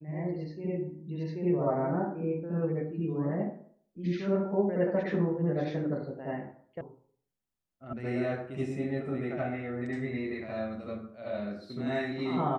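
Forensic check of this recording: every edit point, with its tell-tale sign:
0:06.81: cut off before it has died away
0:07.93: cut off before it has died away

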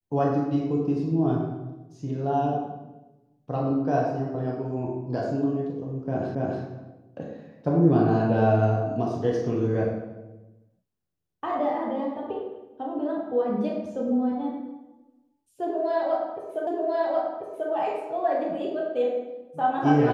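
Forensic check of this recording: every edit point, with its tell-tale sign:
0:06.35: the same again, the last 0.28 s
0:16.67: the same again, the last 1.04 s

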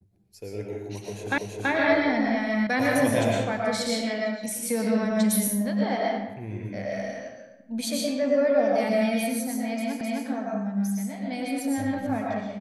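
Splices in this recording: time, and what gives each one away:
0:01.38: the same again, the last 0.33 s
0:02.67: cut off before it has died away
0:10.01: the same again, the last 0.26 s

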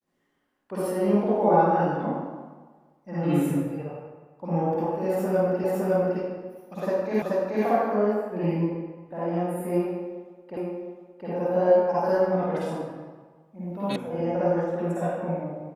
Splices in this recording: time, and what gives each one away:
0:05.64: the same again, the last 0.56 s
0:07.22: the same again, the last 0.43 s
0:10.57: the same again, the last 0.71 s
0:13.96: cut off before it has died away

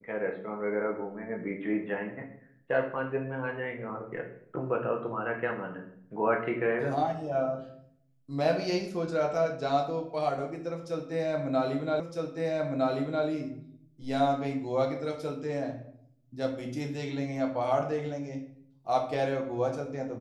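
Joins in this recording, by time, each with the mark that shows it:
0:12.00: the same again, the last 1.26 s

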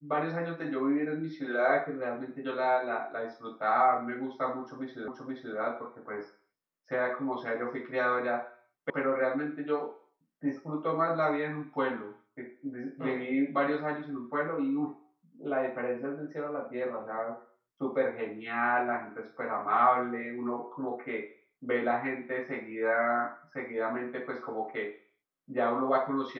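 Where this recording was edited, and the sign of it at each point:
0:05.08: the same again, the last 0.48 s
0:08.90: cut off before it has died away

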